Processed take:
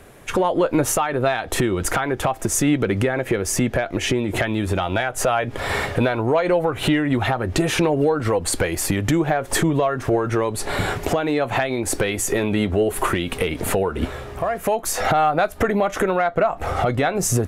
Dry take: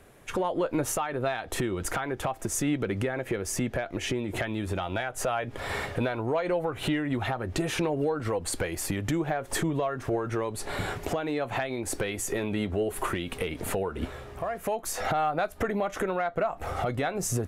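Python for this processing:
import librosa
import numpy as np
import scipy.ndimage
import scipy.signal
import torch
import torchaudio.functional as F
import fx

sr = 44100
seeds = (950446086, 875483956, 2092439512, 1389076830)

y = fx.high_shelf(x, sr, hz=9900.0, db=-6.5, at=(16.3, 17.15))
y = y * 10.0 ** (9.0 / 20.0)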